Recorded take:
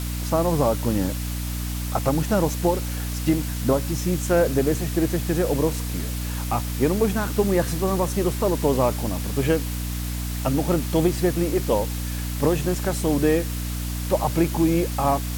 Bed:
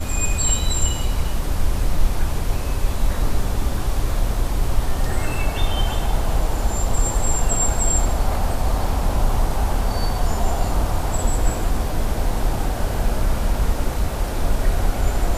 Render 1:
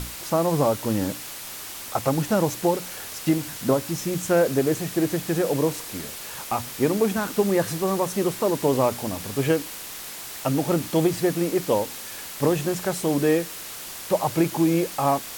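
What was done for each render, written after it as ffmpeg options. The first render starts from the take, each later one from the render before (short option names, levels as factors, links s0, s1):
-af "bandreject=f=60:t=h:w=6,bandreject=f=120:t=h:w=6,bandreject=f=180:t=h:w=6,bandreject=f=240:t=h:w=6,bandreject=f=300:t=h:w=6"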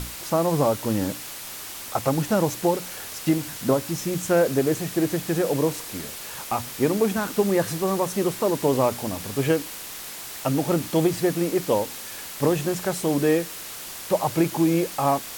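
-af anull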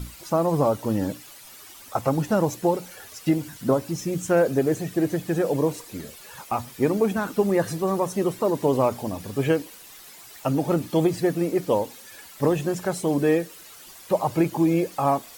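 -af "afftdn=nr=12:nf=-37"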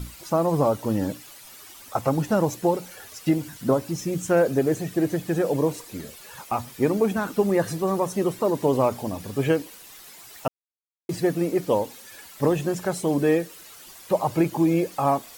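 -filter_complex "[0:a]asplit=3[s0][s1][s2];[s0]atrim=end=10.48,asetpts=PTS-STARTPTS,afade=t=out:st=10.476:d=0.004:c=hsin[s3];[s1]atrim=start=10.48:end=11.09,asetpts=PTS-STARTPTS,volume=0[s4];[s2]atrim=start=11.09,asetpts=PTS-STARTPTS,afade=t=in:d=0.004:c=hsin[s5];[s3][s4][s5]concat=n=3:v=0:a=1"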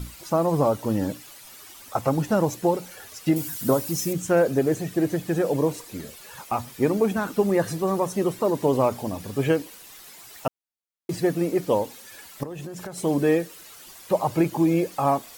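-filter_complex "[0:a]asettb=1/sr,asplit=3[s0][s1][s2];[s0]atrim=end=3.364[s3];[s1]atrim=start=3.36:end=4.13,asetpts=PTS-STARTPTS,afade=t=in:d=0.004:c=qsin,afade=t=out:st=0.766:d=0.004:c=qsin,aemphasis=mode=production:type=50kf[s4];[s2]atrim=start=4.126[s5];[s3][s4]acrossfade=d=0.004:c1=hsin:c2=qsin[s6];[s6][s5]acrossfade=d=0.004:c1=qsin:c2=hsin,asettb=1/sr,asplit=3[s7][s8][s9];[s7]atrim=end=12.434[s10];[s8]atrim=start=12.43:end=12.98,asetpts=PTS-STARTPTS,afade=t=in:d=0.004:c=qsin,afade=t=out:st=0.546:d=0.004:c=qsin,acompressor=threshold=0.0282:ratio=16:attack=3.2:release=140:knee=1:detection=peak[s11];[s9]atrim=start=12.976[s12];[s10][s11]acrossfade=d=0.004:c1=hsin:c2=qsin[s13];[s13][s12]acrossfade=d=0.004:c1=qsin:c2=hsin"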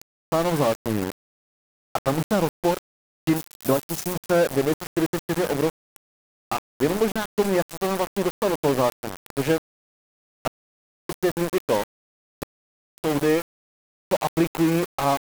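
-af "aeval=exprs='val(0)*gte(abs(val(0)),0.0668)':c=same"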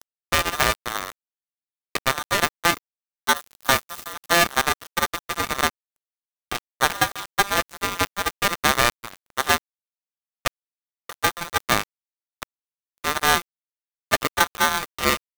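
-af "aeval=exprs='0.473*(cos(1*acos(clip(val(0)/0.473,-1,1)))-cos(1*PI/2))+0.0211*(cos(5*acos(clip(val(0)/0.473,-1,1)))-cos(5*PI/2))+0.0668*(cos(6*acos(clip(val(0)/0.473,-1,1)))-cos(6*PI/2))+0.119*(cos(7*acos(clip(val(0)/0.473,-1,1)))-cos(7*PI/2))':c=same,aeval=exprs='val(0)*sgn(sin(2*PI*1200*n/s))':c=same"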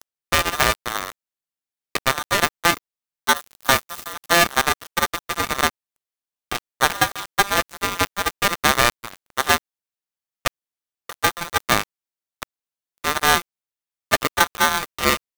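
-af "volume=1.26"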